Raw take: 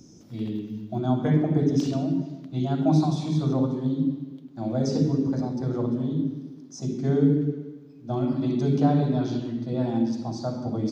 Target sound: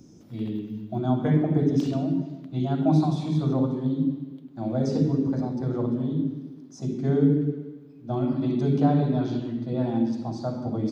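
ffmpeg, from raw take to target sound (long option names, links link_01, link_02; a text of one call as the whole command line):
ffmpeg -i in.wav -af "equalizer=frequency=5800:width_type=o:width=0.85:gain=-7" out.wav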